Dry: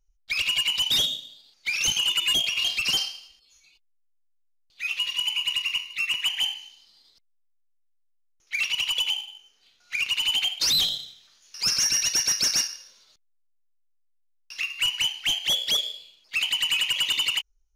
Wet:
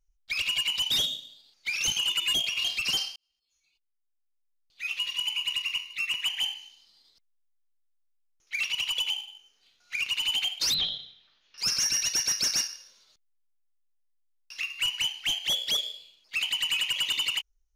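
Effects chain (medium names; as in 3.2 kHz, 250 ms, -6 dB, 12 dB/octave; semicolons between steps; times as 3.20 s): 3.16–4.91 s: fade in; 10.74–11.58 s: Chebyshev low-pass 3.6 kHz, order 3; trim -3.5 dB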